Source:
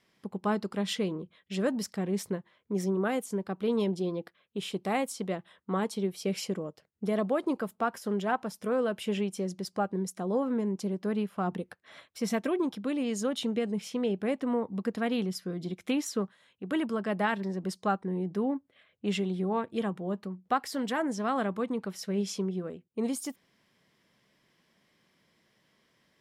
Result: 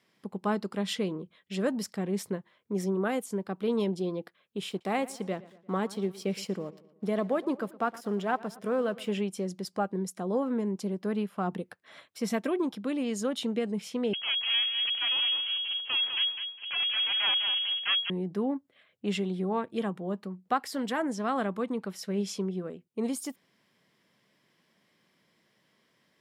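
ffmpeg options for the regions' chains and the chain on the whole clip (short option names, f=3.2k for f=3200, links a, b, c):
-filter_complex "[0:a]asettb=1/sr,asplit=3[a][b][c];[a]atrim=end=4.694[d];[b]atrim=start=4.69:end=9.11,asetpts=PTS-STARTPTS,afade=t=in:d=0.004:c=qsin,afade=t=out:st=4.416:d=0.004:c=qsin,highshelf=f=8.6k:g=-5,aeval=exprs='sgn(val(0))*max(abs(val(0))-0.00112,0)':c=same,asplit=2[e][f];[f]adelay=116,lowpass=f=4.2k:p=1,volume=-19dB,asplit=2[g][h];[h]adelay=116,lowpass=f=4.2k:p=1,volume=0.51,asplit=2[i][j];[j]adelay=116,lowpass=f=4.2k:p=1,volume=0.51,asplit=2[k][l];[l]adelay=116,lowpass=f=4.2k:p=1,volume=0.51[m];[e][g][i][k][m]amix=inputs=5:normalize=0,atrim=end_sample=194922[n];[c]atrim=start=9.106[o];[d][n]acrossfade=d=0.004:c1=hsin:c2=qsin[p];[p][o]acrossfade=d=0.004:c1=qsin:c2=hsin,asettb=1/sr,asplit=3[q][r][s];[q]atrim=end=14.134[t];[r]atrim=start=14.13:end=18.1,asetpts=PTS-STARTPTS,afade=t=in:d=0.004:c=qsin,afade=t=out:st=3.966:d=0.004:c=qsin,aeval=exprs='abs(val(0))':c=same,aecho=1:1:204|408|612:0.422|0.0928|0.0204,atrim=end_sample=175077,lowpass=f=2.8k:t=q:w=0.5098,lowpass=f=2.8k:t=q:w=0.6013,lowpass=f=2.8k:t=q:w=0.9,lowpass=f=2.8k:t=q:w=2.563,afreqshift=-3300[u];[s]atrim=start=18.096[v];[t][u]acrossfade=d=0.004:c1=hsin:c2=qsin[w];[w][v]acrossfade=d=0.004:c1=qsin:c2=hsin,highpass=110,equalizer=f=6.1k:t=o:w=0.21:g=-2"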